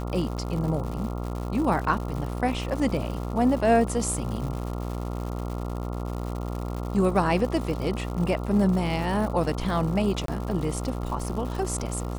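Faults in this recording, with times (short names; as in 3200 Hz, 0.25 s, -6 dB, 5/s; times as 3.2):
buzz 60 Hz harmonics 23 -31 dBFS
crackle 180/s -33 dBFS
10.26–10.28 gap 23 ms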